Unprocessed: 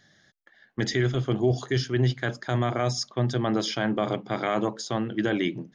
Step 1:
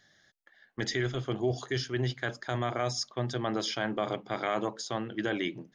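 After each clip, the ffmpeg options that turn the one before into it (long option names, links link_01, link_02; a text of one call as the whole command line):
ffmpeg -i in.wav -af "equalizer=frequency=170:width=0.66:gain=-6.5,volume=-3dB" out.wav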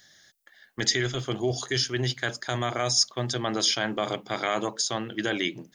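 ffmpeg -i in.wav -af "crystalizer=i=3.5:c=0,volume=2dB" out.wav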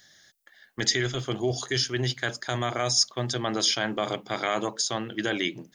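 ffmpeg -i in.wav -af anull out.wav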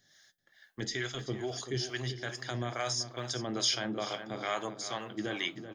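ffmpeg -i in.wav -filter_complex "[0:a]flanger=delay=6.9:depth=3.1:regen=-80:speed=0.66:shape=triangular,asplit=2[link_01][link_02];[link_02]adelay=384,lowpass=frequency=3600:poles=1,volume=-10dB,asplit=2[link_03][link_04];[link_04]adelay=384,lowpass=frequency=3600:poles=1,volume=0.45,asplit=2[link_05][link_06];[link_06]adelay=384,lowpass=frequency=3600:poles=1,volume=0.45,asplit=2[link_07][link_08];[link_08]adelay=384,lowpass=frequency=3600:poles=1,volume=0.45,asplit=2[link_09][link_10];[link_10]adelay=384,lowpass=frequency=3600:poles=1,volume=0.45[link_11];[link_01][link_03][link_05][link_07][link_09][link_11]amix=inputs=6:normalize=0,acrossover=split=550[link_12][link_13];[link_12]aeval=exprs='val(0)*(1-0.7/2+0.7/2*cos(2*PI*2.3*n/s))':channel_layout=same[link_14];[link_13]aeval=exprs='val(0)*(1-0.7/2-0.7/2*cos(2*PI*2.3*n/s))':channel_layout=same[link_15];[link_14][link_15]amix=inputs=2:normalize=0" out.wav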